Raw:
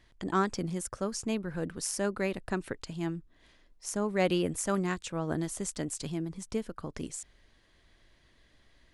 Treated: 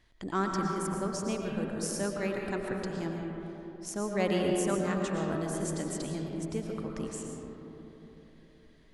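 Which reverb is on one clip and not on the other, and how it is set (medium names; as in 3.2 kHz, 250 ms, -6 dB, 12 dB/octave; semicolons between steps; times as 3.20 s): algorithmic reverb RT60 3.7 s, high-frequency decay 0.3×, pre-delay 75 ms, DRR 0 dB; trim -3 dB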